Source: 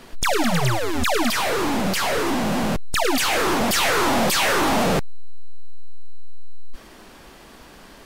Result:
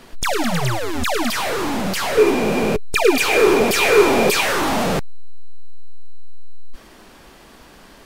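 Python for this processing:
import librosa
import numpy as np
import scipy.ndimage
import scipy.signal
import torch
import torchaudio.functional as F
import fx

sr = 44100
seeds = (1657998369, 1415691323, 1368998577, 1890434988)

y = fx.small_body(x, sr, hz=(420.0, 2400.0), ring_ms=45, db=17, at=(2.17, 4.41))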